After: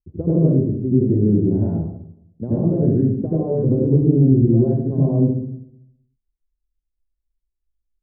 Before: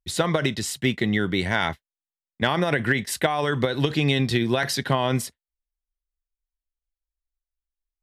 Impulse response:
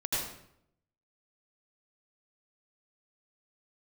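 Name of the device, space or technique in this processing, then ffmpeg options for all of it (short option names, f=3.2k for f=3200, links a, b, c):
next room: -filter_complex "[0:a]lowpass=f=420:w=0.5412,lowpass=f=420:w=1.3066[a];[1:a]atrim=start_sample=2205[b];[a][b]afir=irnorm=-1:irlink=0,asettb=1/sr,asplit=3[c][d][e];[c]atrim=end=0.484[f];[d]atrim=start=0.48:end=1.16,asetpts=PTS-STARTPTS,afade=t=in:d=0.004:c=qsin,afade=t=out:st=0.676:d=0.004:c=qsin,highshelf=f=2.6k:g=10[g];[e]atrim=start=1.156[h];[f][g]acrossfade=d=0.004:c1=hsin:c2=qsin[i];[i][h]acrossfade=d=0.004:c1=qsin:c2=hsin,volume=1.5dB"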